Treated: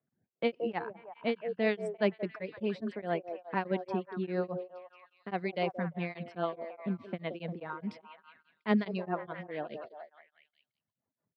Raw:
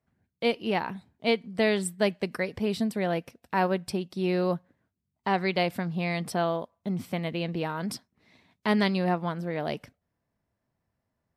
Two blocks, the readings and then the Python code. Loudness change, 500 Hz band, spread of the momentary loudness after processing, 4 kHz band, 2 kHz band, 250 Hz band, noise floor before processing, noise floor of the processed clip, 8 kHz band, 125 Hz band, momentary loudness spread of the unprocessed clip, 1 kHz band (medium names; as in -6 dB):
-6.5 dB, -5.0 dB, 13 LU, -11.5 dB, -7.5 dB, -6.0 dB, -83 dBFS, under -85 dBFS, under -25 dB, -8.0 dB, 8 LU, -7.0 dB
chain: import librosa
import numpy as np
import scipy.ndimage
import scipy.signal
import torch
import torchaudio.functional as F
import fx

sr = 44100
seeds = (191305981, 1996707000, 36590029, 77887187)

y = scipy.signal.sosfilt(scipy.signal.butter(4, 120.0, 'highpass', fs=sr, output='sos'), x)
y = fx.dereverb_blind(y, sr, rt60_s=1.3)
y = fx.env_lowpass(y, sr, base_hz=1900.0, full_db=-21.5)
y = scipy.signal.sosfilt(scipy.signal.butter(2, 2900.0, 'lowpass', fs=sr, output='sos'), y)
y = fx.rotary(y, sr, hz=6.3)
y = fx.echo_stepped(y, sr, ms=174, hz=500.0, octaves=0.7, feedback_pct=70, wet_db=-5.5)
y = y * np.abs(np.cos(np.pi * 4.8 * np.arange(len(y)) / sr))